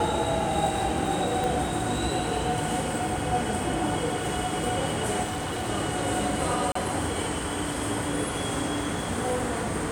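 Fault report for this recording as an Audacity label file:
1.440000	1.440000	pop
5.230000	5.700000	clipped -27 dBFS
6.720000	6.750000	dropout 34 ms

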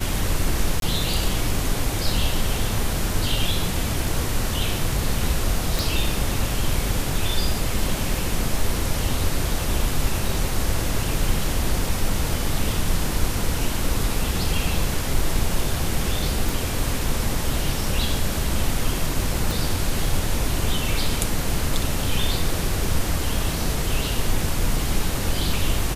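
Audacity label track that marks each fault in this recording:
0.800000	0.820000	dropout 22 ms
5.790000	5.790000	pop
16.490000	16.490000	pop
19.510000	19.510000	pop

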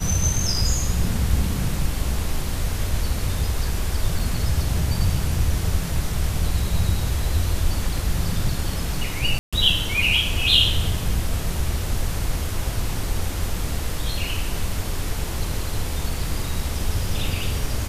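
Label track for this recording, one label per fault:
4.190000	4.190000	dropout 3.2 ms
9.390000	9.530000	dropout 136 ms

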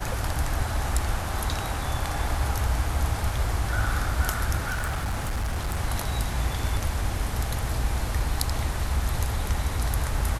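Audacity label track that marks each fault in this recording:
4.700000	5.770000	clipped -24 dBFS

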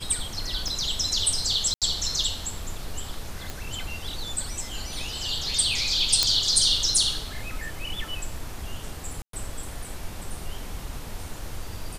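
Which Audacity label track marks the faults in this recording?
0.680000	0.680000	pop
1.740000	1.820000	dropout 77 ms
3.500000	3.500000	pop
6.230000	6.230000	pop -4 dBFS
9.220000	9.330000	dropout 113 ms

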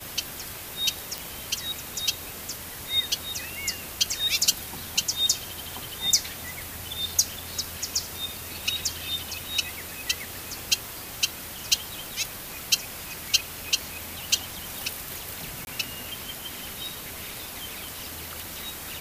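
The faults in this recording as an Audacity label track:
1.180000	1.180000	pop
15.650000	15.670000	dropout 21 ms

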